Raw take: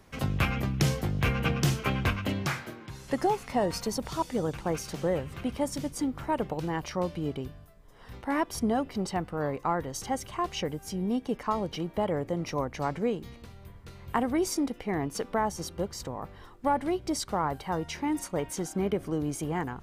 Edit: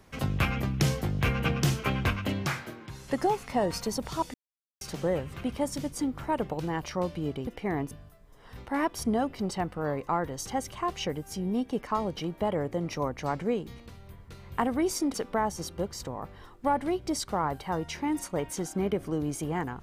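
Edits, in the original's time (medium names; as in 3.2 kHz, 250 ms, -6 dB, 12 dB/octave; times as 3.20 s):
4.34–4.81 s: mute
14.70–15.14 s: move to 7.47 s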